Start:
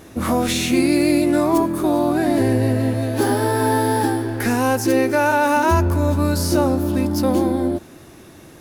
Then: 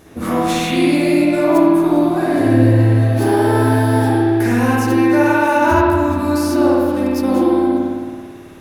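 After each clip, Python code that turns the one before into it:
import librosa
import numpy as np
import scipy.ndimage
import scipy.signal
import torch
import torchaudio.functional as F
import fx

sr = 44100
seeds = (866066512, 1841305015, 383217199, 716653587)

y = fx.rev_spring(x, sr, rt60_s=1.7, pass_ms=(54,), chirp_ms=75, drr_db=-6.0)
y = y * librosa.db_to_amplitude(-3.5)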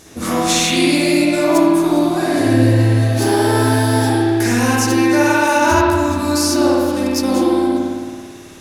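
y = fx.peak_eq(x, sr, hz=6400.0, db=14.0, octaves=1.9)
y = y * librosa.db_to_amplitude(-1.0)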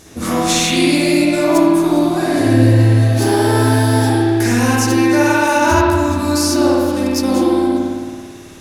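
y = fx.low_shelf(x, sr, hz=170.0, db=4.0)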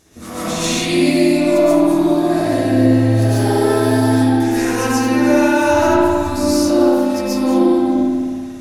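y = fx.rev_freeverb(x, sr, rt60_s=0.92, hf_ratio=0.25, predelay_ms=95, drr_db=-9.0)
y = y * librosa.db_to_amplitude(-11.5)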